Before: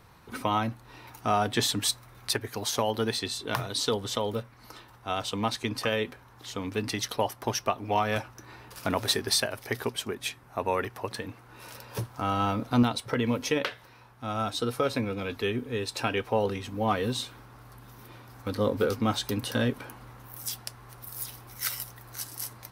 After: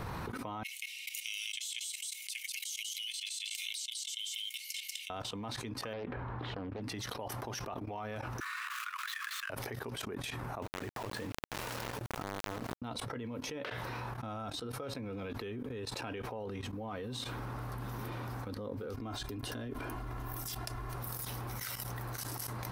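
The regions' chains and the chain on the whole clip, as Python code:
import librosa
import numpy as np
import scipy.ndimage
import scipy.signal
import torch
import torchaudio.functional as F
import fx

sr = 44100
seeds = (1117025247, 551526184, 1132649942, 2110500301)

y = fx.chain(x, sr, fx.cheby_ripple_highpass(hz=2100.0, ripple_db=9),
    fx.high_shelf(hz=5600.0, db=5.5),
    fx.echo_single(ms=191, db=-4.0), at=(0.63, 5.1))
y = fx.chain(y, sr, fx.air_absorb(metres=430.0),
    fx.doppler_dist(depth_ms=0.6), at=(5.93, 6.82))
y = fx.chain(y, sr, fx.median_filter(points=9),
    fx.steep_highpass(hz=1100.0, slope=96),
    fx.high_shelf(hz=4000.0, db=5.5), at=(8.4, 9.5))
y = fx.chain(y, sr, fx.high_shelf(hz=3800.0, db=-4.5),
    fx.over_compress(threshold_db=-35.0, ratio=-0.5),
    fx.quant_dither(seeds[0], bits=6, dither='none'), at=(10.62, 12.82))
y = fx.chain(y, sr, fx.low_shelf(hz=60.0, db=9.5),
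    fx.comb(ms=2.9, depth=0.57), at=(18.94, 20.96))
y = fx.level_steps(y, sr, step_db=19)
y = fx.high_shelf(y, sr, hz=2100.0, db=-8.0)
y = fx.env_flatten(y, sr, amount_pct=100)
y = y * librosa.db_to_amplitude(-4.0)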